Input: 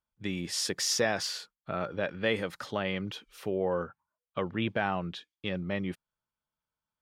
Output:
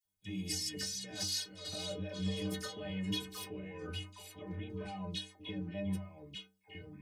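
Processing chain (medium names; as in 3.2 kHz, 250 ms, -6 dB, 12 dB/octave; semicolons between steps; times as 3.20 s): compressor with a negative ratio -38 dBFS, ratio -1; treble shelf 6.2 kHz +5.5 dB; phase dispersion lows, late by 49 ms, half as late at 1.6 kHz; ever faster or slower copies 220 ms, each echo -3 st, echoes 2, each echo -6 dB; peaking EQ 1.3 kHz -13 dB 0.81 oct; inharmonic resonator 91 Hz, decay 0.55 s, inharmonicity 0.03; trim +8.5 dB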